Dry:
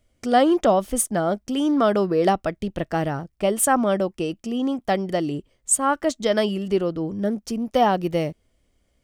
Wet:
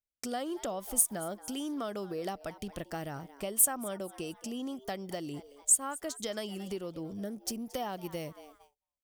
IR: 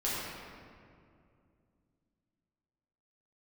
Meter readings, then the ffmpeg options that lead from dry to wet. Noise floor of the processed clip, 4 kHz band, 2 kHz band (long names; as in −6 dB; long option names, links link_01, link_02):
below −85 dBFS, −10.5 dB, −15.0 dB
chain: -filter_complex "[0:a]asplit=2[link_01][link_02];[link_02]asplit=3[link_03][link_04][link_05];[link_03]adelay=225,afreqshift=140,volume=-21dB[link_06];[link_04]adelay=450,afreqshift=280,volume=-30.1dB[link_07];[link_05]adelay=675,afreqshift=420,volume=-39.2dB[link_08];[link_06][link_07][link_08]amix=inputs=3:normalize=0[link_09];[link_01][link_09]amix=inputs=2:normalize=0,acompressor=threshold=-28dB:ratio=3,agate=range=-29dB:threshold=-50dB:ratio=16:detection=peak,aemphasis=mode=production:type=75fm,volume=-8dB"